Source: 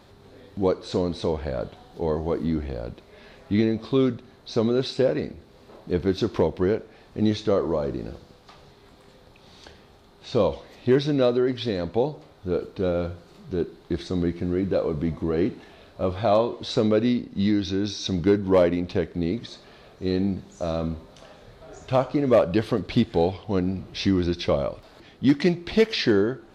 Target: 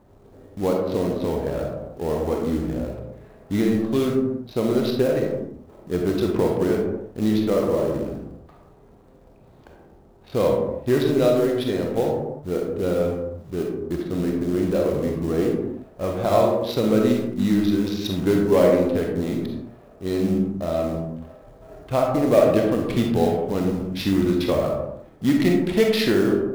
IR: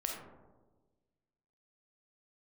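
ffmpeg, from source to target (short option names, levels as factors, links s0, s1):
-filter_complex "[0:a]adynamicsmooth=sensitivity=7.5:basefreq=750,acrusher=bits=5:mode=log:mix=0:aa=0.000001[s0];[1:a]atrim=start_sample=2205,afade=t=out:st=0.41:d=0.01,atrim=end_sample=18522[s1];[s0][s1]afir=irnorm=-1:irlink=0"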